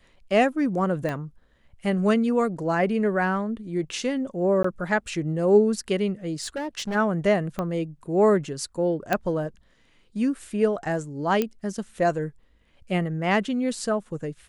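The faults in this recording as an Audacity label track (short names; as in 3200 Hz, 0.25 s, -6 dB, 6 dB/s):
1.090000	1.090000	pop -17 dBFS
4.630000	4.640000	gap 14 ms
6.410000	6.960000	clipped -26 dBFS
7.590000	7.590000	pop -16 dBFS
9.130000	9.130000	pop -9 dBFS
11.420000	11.420000	pop -11 dBFS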